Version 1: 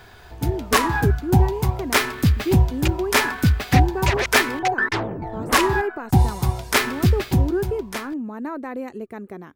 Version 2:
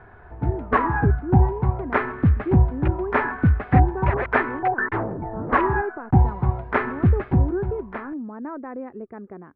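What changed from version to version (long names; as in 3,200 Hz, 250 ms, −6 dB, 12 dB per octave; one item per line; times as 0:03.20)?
speech −3.0 dB
master: add low-pass filter 1,700 Hz 24 dB per octave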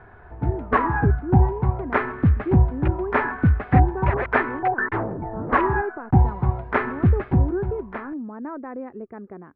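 nothing changed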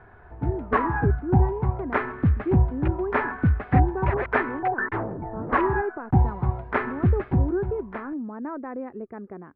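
background −3.0 dB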